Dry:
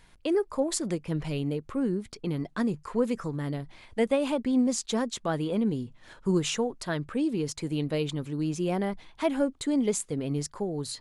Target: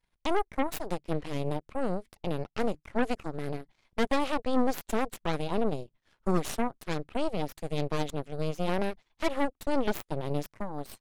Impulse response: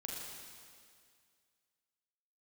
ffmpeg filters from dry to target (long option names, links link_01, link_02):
-af "equalizer=frequency=7700:width=1.8:gain=-4,aeval=exprs='0.224*(cos(1*acos(clip(val(0)/0.224,-1,1)))-cos(1*PI/2))+0.00178*(cos(3*acos(clip(val(0)/0.224,-1,1)))-cos(3*PI/2))+0.0355*(cos(4*acos(clip(val(0)/0.224,-1,1)))-cos(4*PI/2))+0.0355*(cos(7*acos(clip(val(0)/0.224,-1,1)))-cos(7*PI/2))+0.0398*(cos(8*acos(clip(val(0)/0.224,-1,1)))-cos(8*PI/2))':channel_layout=same,volume=-4dB"